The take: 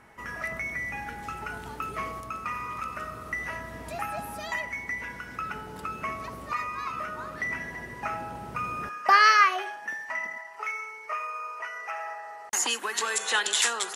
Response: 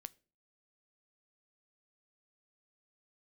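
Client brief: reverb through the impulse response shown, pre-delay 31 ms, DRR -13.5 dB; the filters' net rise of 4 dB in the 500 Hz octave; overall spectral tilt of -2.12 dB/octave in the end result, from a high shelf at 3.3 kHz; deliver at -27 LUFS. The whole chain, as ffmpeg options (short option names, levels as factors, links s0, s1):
-filter_complex "[0:a]equalizer=f=500:t=o:g=5,highshelf=f=3300:g=8.5,asplit=2[s0][s1];[1:a]atrim=start_sample=2205,adelay=31[s2];[s1][s2]afir=irnorm=-1:irlink=0,volume=8.91[s3];[s0][s3]amix=inputs=2:normalize=0,volume=0.188"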